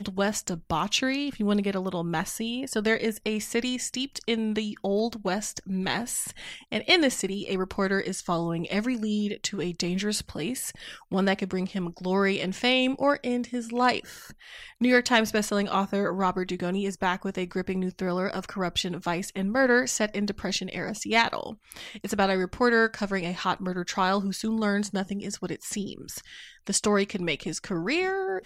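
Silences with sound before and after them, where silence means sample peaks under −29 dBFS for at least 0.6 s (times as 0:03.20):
0:14.00–0:14.81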